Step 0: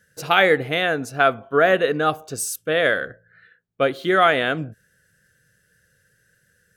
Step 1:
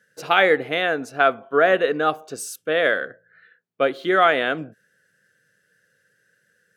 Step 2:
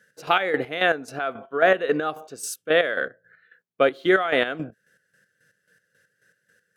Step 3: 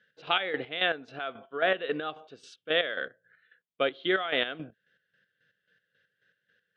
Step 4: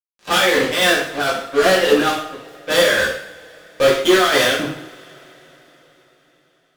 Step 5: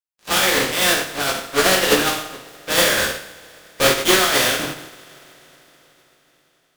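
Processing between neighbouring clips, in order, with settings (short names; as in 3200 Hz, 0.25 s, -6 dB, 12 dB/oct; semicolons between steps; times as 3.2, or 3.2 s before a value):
HPF 230 Hz 12 dB/oct; high shelf 6300 Hz -9.5 dB
limiter -9 dBFS, peak gain reduction 7 dB; chopper 3.7 Hz, depth 65%, duty 40%; gain +2.5 dB
ladder low-pass 3800 Hz, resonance 60%; gain +1.5 dB
fuzz box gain 34 dB, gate -43 dBFS; two-slope reverb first 0.58 s, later 4.7 s, from -28 dB, DRR -7 dB; gain -6 dB
spectral contrast lowered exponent 0.59; gain -2 dB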